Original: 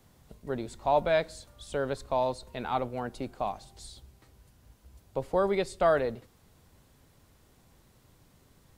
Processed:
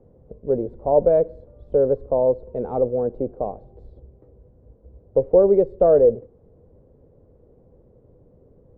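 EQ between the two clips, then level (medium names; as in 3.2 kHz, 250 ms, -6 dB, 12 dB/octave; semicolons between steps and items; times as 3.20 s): resonant low-pass 490 Hz, resonance Q 4.9; bass shelf 140 Hz +4 dB; +4.0 dB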